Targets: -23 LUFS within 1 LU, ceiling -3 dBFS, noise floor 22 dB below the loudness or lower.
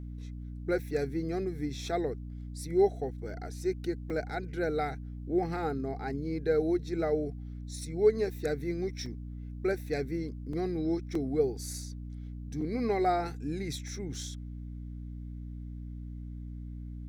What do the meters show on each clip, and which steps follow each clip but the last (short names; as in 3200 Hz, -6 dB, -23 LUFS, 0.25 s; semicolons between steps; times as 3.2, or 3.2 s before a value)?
dropouts 5; longest dropout 3.6 ms; hum 60 Hz; harmonics up to 300 Hz; hum level -38 dBFS; loudness -33.5 LUFS; peak -13.5 dBFS; loudness target -23.0 LUFS
-> interpolate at 4.1/9.06/10.53/11.15/12.61, 3.6 ms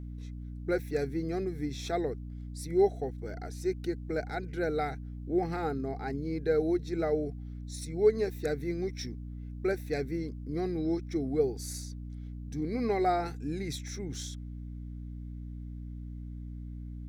dropouts 0; hum 60 Hz; harmonics up to 300 Hz; hum level -38 dBFS
-> de-hum 60 Hz, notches 5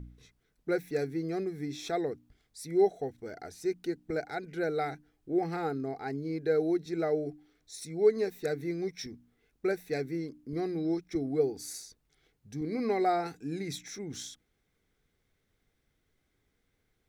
hum none; loudness -33.0 LUFS; peak -13.5 dBFS; loudness target -23.0 LUFS
-> gain +10 dB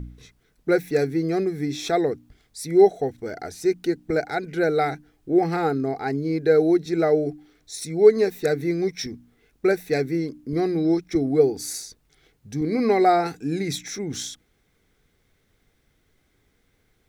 loudness -23.0 LUFS; peak -3.5 dBFS; noise floor -67 dBFS